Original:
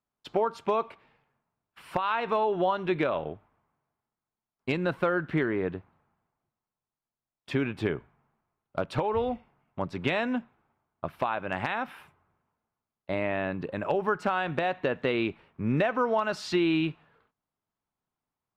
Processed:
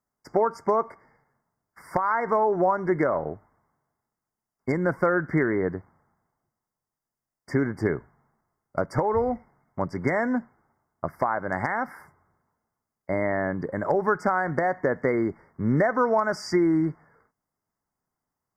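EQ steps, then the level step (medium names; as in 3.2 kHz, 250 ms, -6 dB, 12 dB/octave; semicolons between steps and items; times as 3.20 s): brick-wall FIR band-stop 2.2–4.6 kHz; +4.0 dB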